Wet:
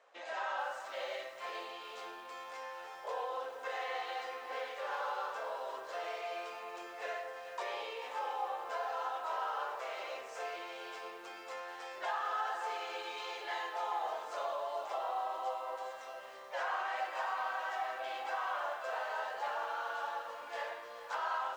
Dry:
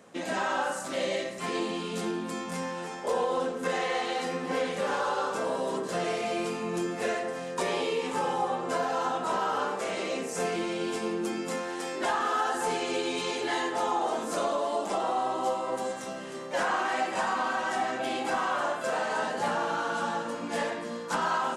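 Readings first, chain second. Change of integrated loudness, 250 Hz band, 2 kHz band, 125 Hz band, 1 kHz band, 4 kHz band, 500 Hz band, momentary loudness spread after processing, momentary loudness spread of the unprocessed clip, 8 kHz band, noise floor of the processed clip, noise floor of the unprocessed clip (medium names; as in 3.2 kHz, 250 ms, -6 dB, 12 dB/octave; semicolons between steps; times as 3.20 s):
-9.5 dB, -27.5 dB, -8.0 dB, under -35 dB, -7.5 dB, -10.0 dB, -12.0 dB, 8 LU, 5 LU, -18.0 dB, -49 dBFS, -37 dBFS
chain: high-pass 570 Hz 24 dB/octave; distance through air 140 m; bit-crushed delay 435 ms, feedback 35%, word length 8-bit, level -12 dB; trim -7 dB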